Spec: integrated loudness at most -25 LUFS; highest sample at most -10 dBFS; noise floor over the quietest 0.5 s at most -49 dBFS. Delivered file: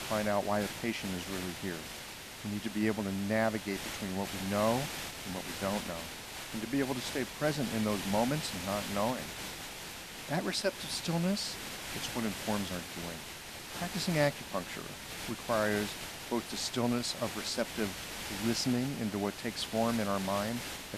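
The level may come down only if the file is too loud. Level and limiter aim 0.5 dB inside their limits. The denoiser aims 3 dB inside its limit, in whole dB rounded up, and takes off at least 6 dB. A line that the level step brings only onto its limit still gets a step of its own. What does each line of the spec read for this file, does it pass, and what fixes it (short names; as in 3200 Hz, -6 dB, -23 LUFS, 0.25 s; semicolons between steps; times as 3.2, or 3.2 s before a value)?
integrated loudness -34.5 LUFS: OK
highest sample -17.0 dBFS: OK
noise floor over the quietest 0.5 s -45 dBFS: fail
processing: denoiser 7 dB, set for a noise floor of -45 dBFS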